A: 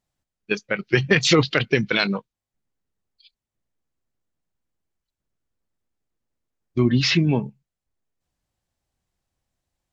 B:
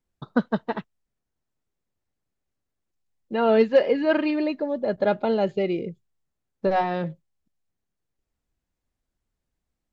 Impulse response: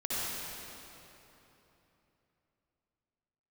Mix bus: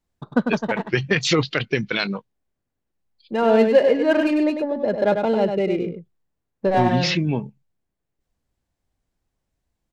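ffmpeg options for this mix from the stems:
-filter_complex "[0:a]volume=-2.5dB[link_01];[1:a]bandreject=frequency=1300:width=13,adynamicsmooth=sensitivity=5.5:basefreq=2800,volume=2.5dB,asplit=2[link_02][link_03];[link_03]volume=-6dB,aecho=0:1:99:1[link_04];[link_01][link_02][link_04]amix=inputs=3:normalize=0"

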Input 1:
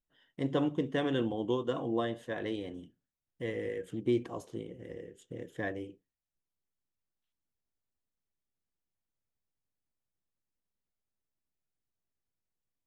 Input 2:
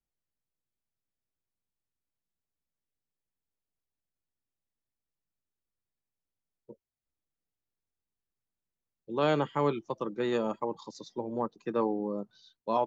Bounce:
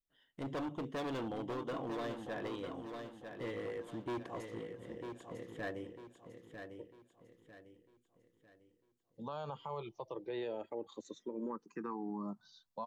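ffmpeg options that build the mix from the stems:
ffmpeg -i stem1.wav -i stem2.wav -filter_complex "[0:a]equalizer=frequency=3800:width_type=o:width=0.77:gain=3,asoftclip=type=hard:threshold=-31.5dB,volume=-5.5dB,asplit=2[link_01][link_02];[link_02]volume=-7dB[link_03];[1:a]acompressor=threshold=-30dB:ratio=3,asplit=2[link_04][link_05];[link_05]afreqshift=-0.28[link_06];[link_04][link_06]amix=inputs=2:normalize=1,adelay=100,volume=-1dB[link_07];[link_03]aecho=0:1:949|1898|2847|3796|4745:1|0.39|0.152|0.0593|0.0231[link_08];[link_01][link_07][link_08]amix=inputs=3:normalize=0,adynamicequalizer=threshold=0.002:dfrequency=980:dqfactor=1.1:tfrequency=980:tqfactor=1.1:attack=5:release=100:ratio=0.375:range=2.5:mode=boostabove:tftype=bell,alimiter=level_in=8dB:limit=-24dB:level=0:latency=1:release=88,volume=-8dB" out.wav

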